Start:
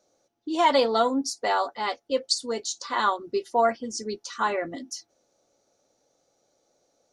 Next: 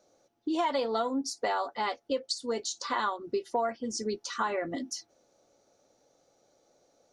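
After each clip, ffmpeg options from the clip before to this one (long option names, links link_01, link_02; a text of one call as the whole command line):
ffmpeg -i in.wav -af "acompressor=threshold=-31dB:ratio=4,highshelf=frequency=4300:gain=-5,volume=3dB" out.wav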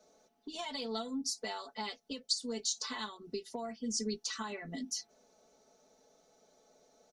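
ffmpeg -i in.wav -filter_complex "[0:a]acrossover=split=200|3000[link_01][link_02][link_03];[link_02]acompressor=threshold=-50dB:ratio=2.5[link_04];[link_01][link_04][link_03]amix=inputs=3:normalize=0,aecho=1:1:4.6:0.96,volume=-1.5dB" out.wav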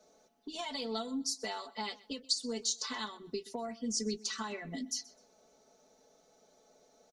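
ffmpeg -i in.wav -af "aecho=1:1:127|254:0.0891|0.0232,volume=1dB" out.wav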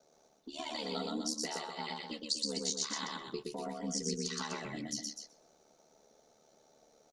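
ffmpeg -i in.wav -af "aeval=exprs='val(0)*sin(2*PI*37*n/s)':channel_layout=same,aecho=1:1:119.5|250.7:0.794|0.398" out.wav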